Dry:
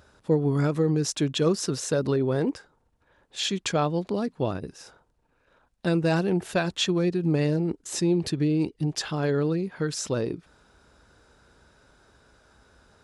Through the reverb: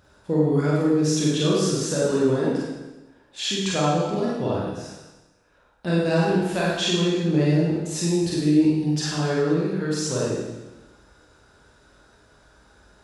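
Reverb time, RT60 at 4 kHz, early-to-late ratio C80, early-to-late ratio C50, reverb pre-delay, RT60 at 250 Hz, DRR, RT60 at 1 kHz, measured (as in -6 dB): 1.1 s, 1.1 s, 1.0 dB, -1.5 dB, 26 ms, 1.1 s, -6.0 dB, 1.1 s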